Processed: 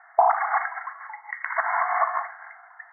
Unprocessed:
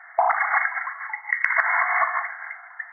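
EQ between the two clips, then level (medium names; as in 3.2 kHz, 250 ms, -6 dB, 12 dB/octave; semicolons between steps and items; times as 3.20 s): low-pass 1.2 kHz 12 dB/octave; dynamic bell 810 Hz, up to +4 dB, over -32 dBFS, Q 0.73; distance through air 200 m; 0.0 dB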